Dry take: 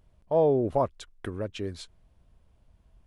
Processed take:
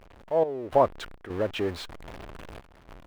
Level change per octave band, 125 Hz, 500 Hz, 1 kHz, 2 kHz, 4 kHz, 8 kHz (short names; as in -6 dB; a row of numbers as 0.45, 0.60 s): -4.0, +0.5, +4.0, +7.5, +5.5, -0.5 dB